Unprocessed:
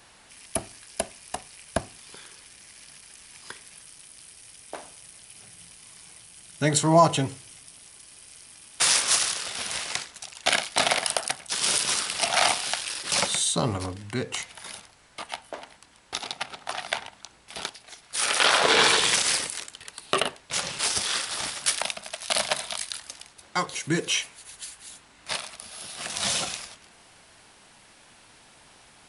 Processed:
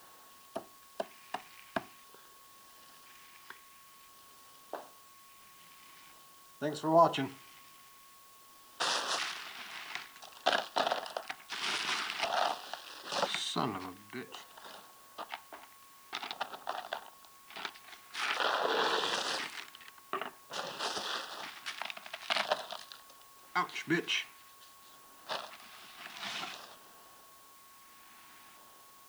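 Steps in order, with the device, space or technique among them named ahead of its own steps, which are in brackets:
0:19.90–0:20.53: low-pass filter 1,900 Hz
shortwave radio (band-pass filter 270–2,900 Hz; amplitude tremolo 0.67 Hz, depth 57%; auto-filter notch square 0.49 Hz 530–2,200 Hz; steady tone 1,100 Hz −58 dBFS; white noise bed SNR 21 dB)
level −1.5 dB

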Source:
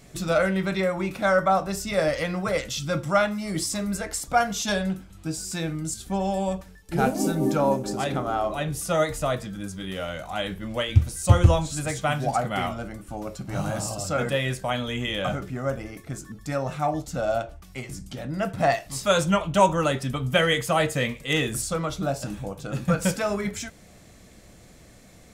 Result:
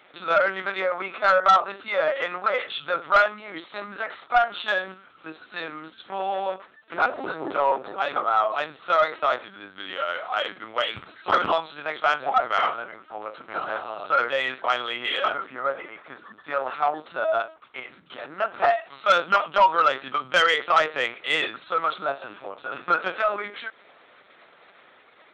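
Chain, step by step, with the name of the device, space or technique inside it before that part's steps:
talking toy (linear-prediction vocoder at 8 kHz pitch kept; high-pass filter 610 Hz 12 dB per octave; parametric band 1,300 Hz +9.5 dB 0.46 octaves; soft clipping −13 dBFS, distortion −16 dB)
level +3.5 dB

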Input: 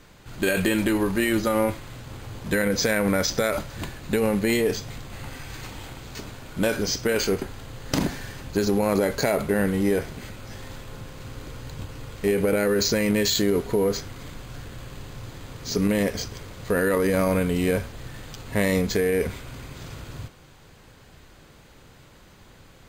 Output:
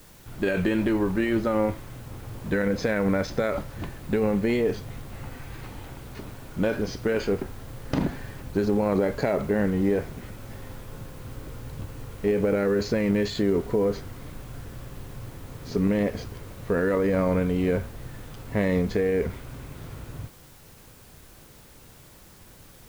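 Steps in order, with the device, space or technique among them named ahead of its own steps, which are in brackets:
cassette deck with a dirty head (head-to-tape spacing loss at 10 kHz 27 dB; tape wow and flutter; white noise bed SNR 27 dB)

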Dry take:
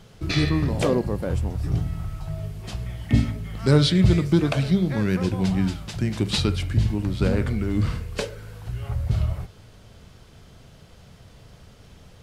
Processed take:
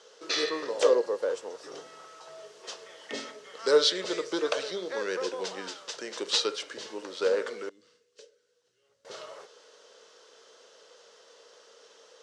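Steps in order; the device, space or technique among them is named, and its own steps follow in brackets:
0:07.69–0:09.05: guitar amp tone stack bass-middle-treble 10-0-1
phone speaker on a table (loudspeaker in its box 470–7,800 Hz, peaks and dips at 470 Hz +9 dB, 730 Hz −9 dB, 2,300 Hz −8 dB, 5,900 Hz +5 dB)

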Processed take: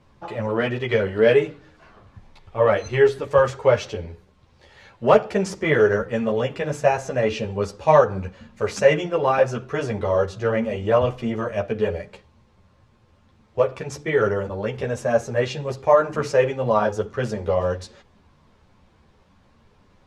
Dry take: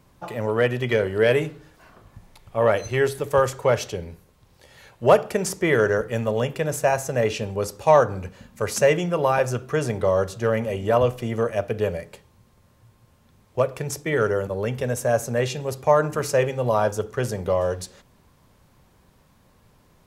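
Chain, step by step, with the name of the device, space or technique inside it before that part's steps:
string-machine ensemble chorus (string-ensemble chorus; low-pass filter 4,800 Hz 12 dB per octave)
level +4 dB

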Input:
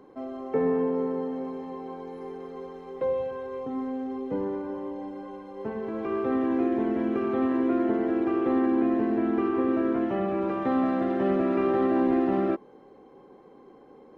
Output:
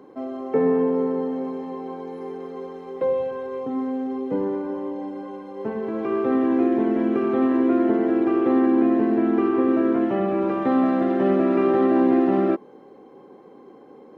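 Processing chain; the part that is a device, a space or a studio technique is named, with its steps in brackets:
filter by subtraction (in parallel: low-pass filter 230 Hz 12 dB per octave + polarity inversion)
on the sum: level +3.5 dB

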